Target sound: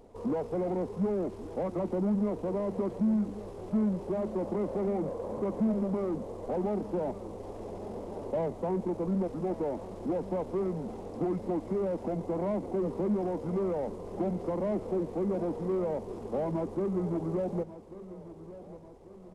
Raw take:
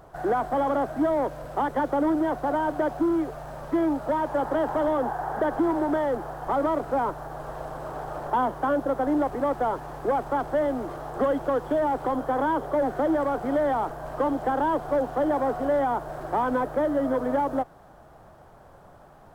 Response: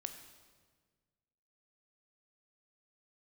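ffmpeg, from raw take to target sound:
-filter_complex "[0:a]asetrate=28595,aresample=44100,atempo=1.54221,equalizer=f=220:w=5.5:g=4.5,asplit=2[a][b];[b]asoftclip=type=tanh:threshold=-28.5dB,volume=-6dB[c];[a][c]amix=inputs=2:normalize=0,aecho=1:1:1142|2284|3426|4568:0.168|0.0806|0.0387|0.0186,volume=-8.5dB"

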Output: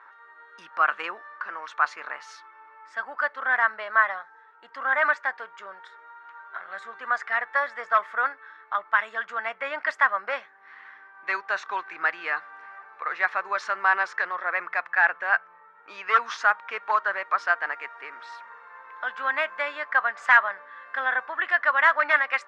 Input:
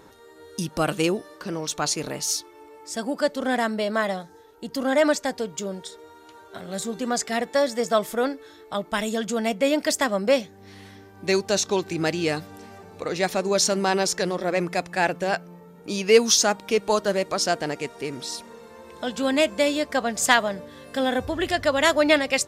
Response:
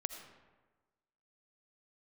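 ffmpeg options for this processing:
-af "aeval=exprs='0.266*(abs(mod(val(0)/0.266+3,4)-2)-1)':c=same,asuperpass=centerf=1400:order=4:qfactor=1.7,volume=9dB"

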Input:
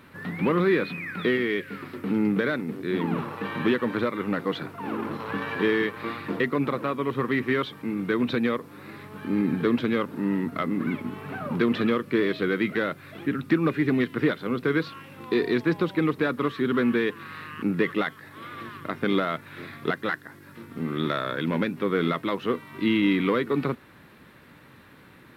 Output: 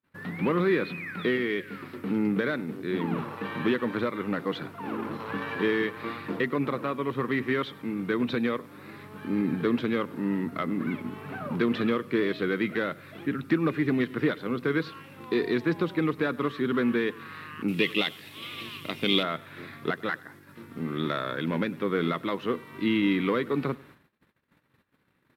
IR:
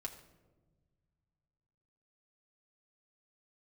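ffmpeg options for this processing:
-filter_complex "[0:a]asettb=1/sr,asplit=3[a][b][c];[a]atrim=end=17.684[d];[b]atrim=start=17.68:end=19.23,asetpts=PTS-STARTPTS,afade=t=in:d=0.004:c=qsin,afade=t=out:st=1.546:d=0.004:c=qsin,highshelf=f=2.1k:t=q:w=3:g=9[e];[c]atrim=start=19.226[f];[d][e]acrossfade=d=0.004:c1=hsin:c2=qsin[g];[g][f]acrossfade=d=0.004:c1=qsin:c2=hsin,aecho=1:1:100|200|300:0.075|0.0315|0.0132,agate=range=-38dB:threshold=-48dB:ratio=16:detection=peak,volume=-2.5dB"

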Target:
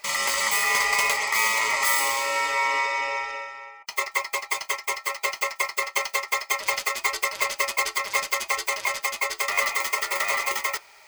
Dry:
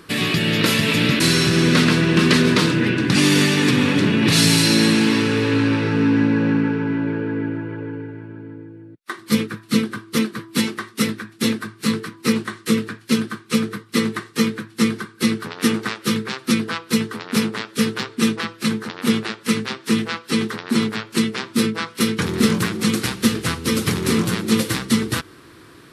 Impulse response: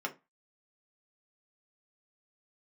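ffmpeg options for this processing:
-filter_complex "[0:a]aeval=exprs='val(0)*sin(2*PI*680*n/s)':c=same,aexciter=amount=3.5:drive=9.3:freq=7.9k,asplit=2[a][b];[1:a]atrim=start_sample=2205,atrim=end_sample=3969[c];[b][c]afir=irnorm=-1:irlink=0,volume=-3dB[d];[a][d]amix=inputs=2:normalize=0,asetrate=103194,aresample=44100,dynaudnorm=f=150:g=11:m=11.5dB,volume=-7.5dB"

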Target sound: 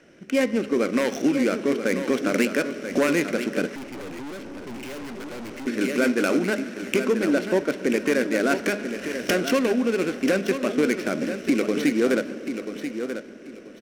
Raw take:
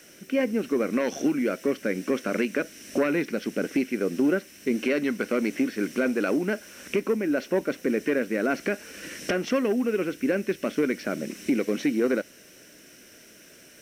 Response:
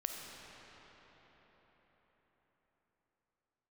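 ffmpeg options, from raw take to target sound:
-filter_complex "[0:a]asplit=2[a][b];[1:a]atrim=start_sample=2205[c];[b][c]afir=irnorm=-1:irlink=0,volume=-8dB[d];[a][d]amix=inputs=2:normalize=0,adynamicsmooth=sensitivity=6:basefreq=1.2k,highshelf=f=3.7k:g=11.5,aecho=1:1:986|1972|2958:0.355|0.0816|0.0188,asettb=1/sr,asplit=3[e][f][g];[e]atrim=end=3.754[h];[f]atrim=start=3.75:end=5.67,asetpts=PTS-STARTPTS,afade=t=in:d=0.004:c=qsin,afade=t=out:st=1.916:d=0.004:c=qsin,aeval=exprs='(tanh(50.1*val(0)+0.45)-tanh(0.45))/50.1':c=same[i];[g]atrim=start=5.666[j];[h][i]acrossfade=d=0.004:c1=hsin:c2=qsin[k];[k][j]acrossfade=d=0.004:c1=qsin:c2=hsin,bandreject=f=207.9:t=h:w=4,bandreject=f=415.8:t=h:w=4,bandreject=f=623.7:t=h:w=4,bandreject=f=831.6:t=h:w=4,bandreject=f=1.0395k:t=h:w=4,bandreject=f=1.2474k:t=h:w=4,bandreject=f=1.4553k:t=h:w=4,bandreject=f=1.6632k:t=h:w=4,bandreject=f=1.8711k:t=h:w=4,bandreject=f=2.079k:t=h:w=4,bandreject=f=2.2869k:t=h:w=4,bandreject=f=2.4948k:t=h:w=4,bandreject=f=2.7027k:t=h:w=4,bandreject=f=2.9106k:t=h:w=4,bandreject=f=3.1185k:t=h:w=4,bandreject=f=3.3264k:t=h:w=4,bandreject=f=3.5343k:t=h:w=4,bandreject=f=3.7422k:t=h:w=4,bandreject=f=3.9501k:t=h:w=4,bandreject=f=4.158k:t=h:w=4,bandreject=f=4.3659k:t=h:w=4,bandreject=f=4.5738k:t=h:w=4,bandreject=f=4.7817k:t=h:w=4,bandreject=f=4.9896k:t=h:w=4,bandreject=f=5.1975k:t=h:w=4,bandreject=f=5.4054k:t=h:w=4,bandreject=f=5.6133k:t=h:w=4,bandreject=f=5.8212k:t=h:w=4,bandreject=f=6.0291k:t=h:w=4,bandreject=f=6.237k:t=h:w=4"

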